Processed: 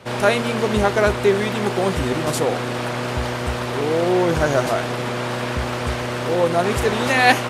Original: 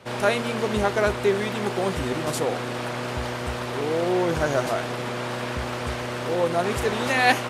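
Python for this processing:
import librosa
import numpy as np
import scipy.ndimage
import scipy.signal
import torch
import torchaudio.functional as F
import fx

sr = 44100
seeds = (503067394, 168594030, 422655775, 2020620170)

y = fx.low_shelf(x, sr, hz=160.0, db=2.5)
y = y * 10.0 ** (4.5 / 20.0)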